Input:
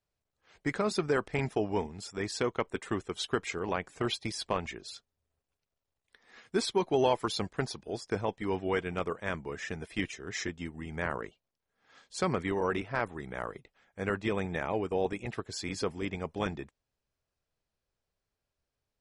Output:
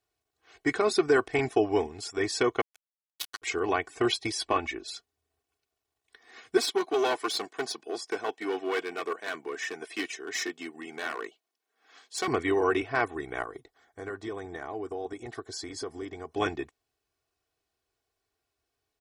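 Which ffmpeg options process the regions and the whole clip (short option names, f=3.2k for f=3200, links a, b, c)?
-filter_complex "[0:a]asettb=1/sr,asplit=3[a][b][c];[a]atrim=end=2.614[d];[b]atrim=start=2.61:end=3.42,asetpts=PTS-STARTPTS,afade=t=in:d=0.004:c=qsin,afade=t=out:st=0.806:d=0.004:c=qsin,highpass=1.3k,equalizer=f=3.5k:w=4.7:g=4,acrusher=bits=3:mix=0:aa=0.5[e];[c]atrim=start=3.416[f];[d][e]acrossfade=d=0.004:c1=hsin:c2=qsin[g];[g][f]acrossfade=d=0.004:c1=qsin:c2=hsin,asettb=1/sr,asplit=3[h][i][j];[h]atrim=end=4.454[k];[i]atrim=start=4.45:end=4.88,asetpts=PTS-STARTPTS,afade=t=in:d=0.004:c=qsin,afade=t=out:st=0.426:d=0.004:c=qsin,highshelf=f=6.8k:g=-10.5,aecho=1:1:3.5:0.38,atrim=end_sample=18963[l];[j]atrim=start=4.876[m];[k][l]acrossfade=d=0.004:c1=hsin:c2=qsin[n];[n][m]acrossfade=d=0.004:c1=qsin:c2=hsin,asettb=1/sr,asplit=3[o][p][q];[o]atrim=end=6.574[r];[p]atrim=start=6.57:end=12.28,asetpts=PTS-STARTPTS,afade=t=in:d=0.004:c=qsin,afade=t=out:st=5.706:d=0.004:c=qsin,lowshelf=f=430:g=-5.5,aeval=exprs='clip(val(0),-1,0.02)':c=same,highpass=f=180:w=0.5412,highpass=f=180:w=1.3066[s];[q]atrim=start=12.276[t];[r][s]acrossfade=d=0.004:c1=hsin:c2=qsin[u];[u][t]acrossfade=d=0.004:c1=qsin:c2=hsin,asettb=1/sr,asplit=3[v][w][x];[v]atrim=end=13.424[y];[w]atrim=start=13.42:end=16.32,asetpts=PTS-STARTPTS,afade=t=in:d=0.004:c=qsin,afade=t=out:st=2.896:d=0.004:c=qsin,acompressor=threshold=-41dB:ratio=2.5:attack=3.2:release=140:knee=1:detection=peak,equalizer=f=2.6k:t=o:w=0.37:g=-14.5[z];[x]atrim=start=16.316[aa];[y][z]acrossfade=d=0.004:c1=hsin:c2=qsin[ab];[ab][aa]acrossfade=d=0.004:c1=qsin:c2=hsin,highpass=f=160:p=1,aecho=1:1:2.7:0.79,volume=3.5dB"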